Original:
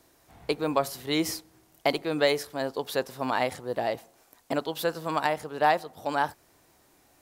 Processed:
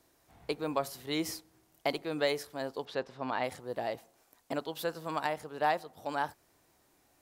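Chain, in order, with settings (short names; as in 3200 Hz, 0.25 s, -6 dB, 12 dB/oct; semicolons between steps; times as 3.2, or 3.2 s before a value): 2.85–3.44 LPF 4000 Hz 12 dB/oct; gain -6.5 dB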